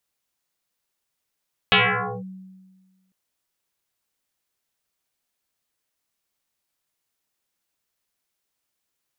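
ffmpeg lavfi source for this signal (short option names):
-f lavfi -i "aevalsrc='0.266*pow(10,-3*t/1.5)*sin(2*PI*188*t+11*clip(1-t/0.51,0,1)*sin(2*PI*1.62*188*t))':d=1.4:s=44100"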